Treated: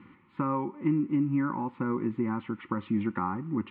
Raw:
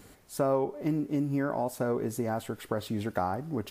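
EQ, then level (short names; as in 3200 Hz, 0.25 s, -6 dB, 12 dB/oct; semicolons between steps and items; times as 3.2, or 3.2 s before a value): Butterworth band-stop 670 Hz, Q 1.2; speaker cabinet 170–2200 Hz, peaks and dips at 210 Hz +4 dB, 350 Hz +9 dB, 520 Hz +4 dB, 840 Hz +3 dB, 1600 Hz +8 dB; fixed phaser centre 1600 Hz, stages 6; +6.5 dB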